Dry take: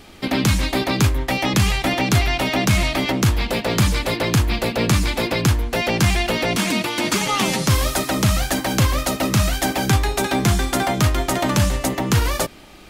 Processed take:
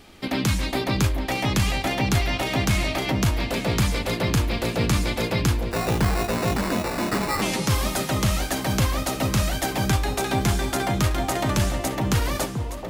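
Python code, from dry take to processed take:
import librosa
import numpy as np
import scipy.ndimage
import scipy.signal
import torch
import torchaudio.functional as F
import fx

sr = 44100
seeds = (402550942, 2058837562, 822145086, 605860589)

y = fx.echo_alternate(x, sr, ms=434, hz=1000.0, feedback_pct=54, wet_db=-5.5)
y = fx.sample_hold(y, sr, seeds[0], rate_hz=3200.0, jitter_pct=0, at=(5.71, 7.42))
y = y * librosa.db_to_amplitude(-5.0)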